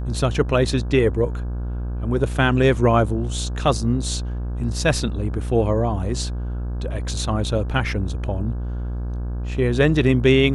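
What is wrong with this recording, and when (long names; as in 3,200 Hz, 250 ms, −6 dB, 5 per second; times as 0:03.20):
mains buzz 60 Hz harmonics 28 −26 dBFS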